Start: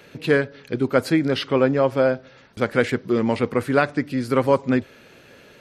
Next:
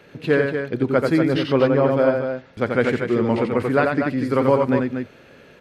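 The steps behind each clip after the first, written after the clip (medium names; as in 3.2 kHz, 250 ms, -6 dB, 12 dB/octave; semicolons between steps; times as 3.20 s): treble shelf 3.6 kHz -9.5 dB; on a send: loudspeakers at several distances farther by 30 m -4 dB, 82 m -7 dB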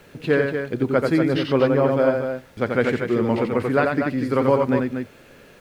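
added noise pink -56 dBFS; trim -1 dB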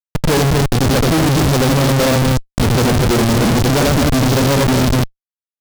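tone controls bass +11 dB, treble +2 dB; Schmitt trigger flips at -23 dBFS; delay time shaken by noise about 3.3 kHz, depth 0.072 ms; trim +4.5 dB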